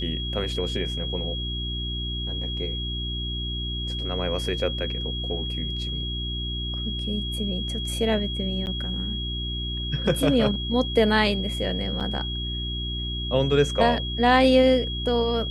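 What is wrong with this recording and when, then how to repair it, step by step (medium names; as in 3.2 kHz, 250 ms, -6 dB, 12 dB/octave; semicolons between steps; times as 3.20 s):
hum 60 Hz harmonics 6 -31 dBFS
whine 3.3 kHz -31 dBFS
8.66–8.67 s: dropout 9.3 ms
12.00–12.01 s: dropout 6.1 ms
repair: band-stop 3.3 kHz, Q 30; de-hum 60 Hz, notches 6; interpolate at 8.66 s, 9.3 ms; interpolate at 12.00 s, 6.1 ms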